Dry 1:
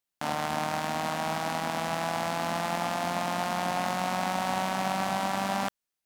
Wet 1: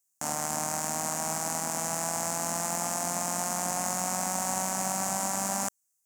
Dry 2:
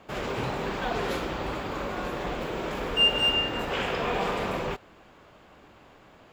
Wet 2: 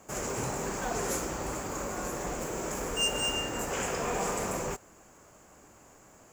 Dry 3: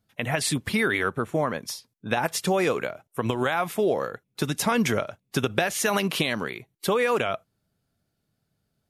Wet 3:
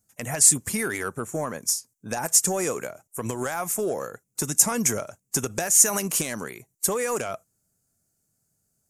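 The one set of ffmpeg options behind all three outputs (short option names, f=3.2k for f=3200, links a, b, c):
-af "aeval=exprs='0.501*sin(PI/2*1.78*val(0)/0.501)':c=same,highshelf=f=5.1k:t=q:w=3:g=12.5,volume=-12dB"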